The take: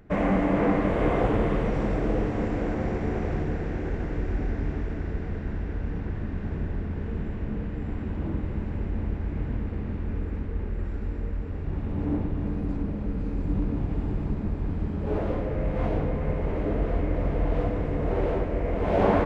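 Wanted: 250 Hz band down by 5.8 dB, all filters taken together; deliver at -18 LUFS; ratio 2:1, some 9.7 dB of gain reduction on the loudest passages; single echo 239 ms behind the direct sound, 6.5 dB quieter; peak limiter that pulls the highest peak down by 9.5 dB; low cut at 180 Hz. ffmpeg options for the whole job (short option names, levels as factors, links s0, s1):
-af "highpass=180,equalizer=f=250:t=o:g=-6,acompressor=threshold=0.0141:ratio=2,alimiter=level_in=2.24:limit=0.0631:level=0:latency=1,volume=0.447,aecho=1:1:239:0.473,volume=12.6"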